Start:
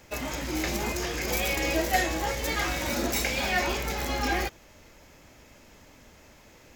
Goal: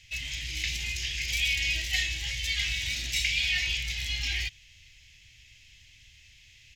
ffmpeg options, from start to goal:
ffmpeg -i in.wav -af "firequalizer=gain_entry='entry(120,0);entry(180,-19);entry(450,-28);entry(1300,-24);entry(1900,0);entry(2900,10);entry(4400,4);entry(16000,-16)':delay=0.05:min_phase=1,volume=-1.5dB" out.wav

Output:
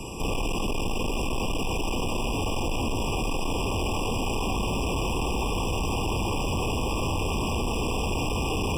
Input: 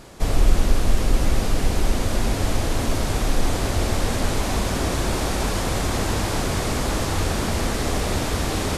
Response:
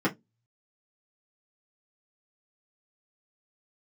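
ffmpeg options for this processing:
-filter_complex "[0:a]superequalizer=8b=0.447:12b=2.24:13b=0.631:15b=1.58,acrossover=split=150|1300|3100[link_01][link_02][link_03][link_04];[link_01]acompressor=threshold=-24dB:ratio=4[link_05];[link_02]acompressor=threshold=-28dB:ratio=4[link_06];[link_03]acompressor=threshold=-35dB:ratio=4[link_07];[link_04]acompressor=threshold=-44dB:ratio=4[link_08];[link_05][link_06][link_07][link_08]amix=inputs=4:normalize=0,acrossover=split=400[link_09][link_10];[link_09]alimiter=limit=-23.5dB:level=0:latency=1[link_11];[link_11][link_10]amix=inputs=2:normalize=0,asoftclip=type=hard:threshold=-33dB,afftfilt=real='re*eq(mod(floor(b*sr/1024/1200),2),0)':imag='im*eq(mod(floor(b*sr/1024/1200),2),0)':win_size=1024:overlap=0.75,volume=8.5dB"

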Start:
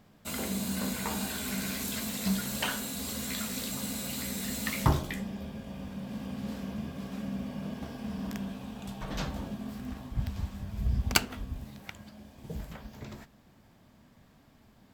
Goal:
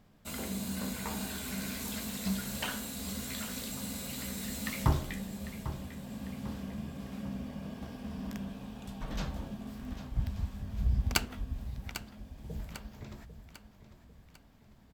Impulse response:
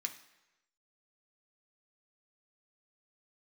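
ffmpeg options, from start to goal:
-filter_complex "[0:a]lowshelf=frequency=64:gain=9.5,asplit=2[link_01][link_02];[link_02]aecho=0:1:798|1596|2394|3192|3990:0.251|0.118|0.0555|0.0261|0.0123[link_03];[link_01][link_03]amix=inputs=2:normalize=0,volume=-4.5dB"

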